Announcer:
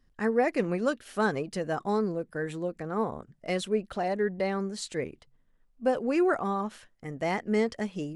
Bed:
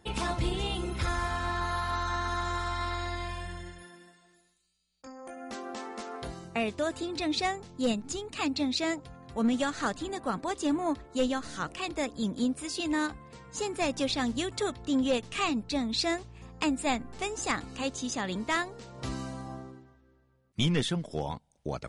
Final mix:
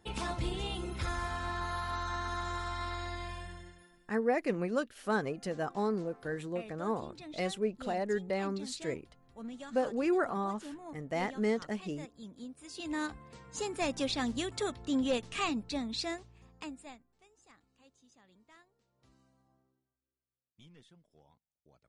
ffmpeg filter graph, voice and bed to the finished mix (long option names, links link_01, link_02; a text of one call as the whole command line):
ffmpeg -i stem1.wav -i stem2.wav -filter_complex "[0:a]adelay=3900,volume=-4.5dB[link_01];[1:a]volume=8.5dB,afade=type=out:start_time=3.36:duration=0.75:silence=0.251189,afade=type=in:start_time=12.57:duration=0.62:silence=0.211349,afade=type=out:start_time=15.43:duration=1.62:silence=0.0398107[link_02];[link_01][link_02]amix=inputs=2:normalize=0" out.wav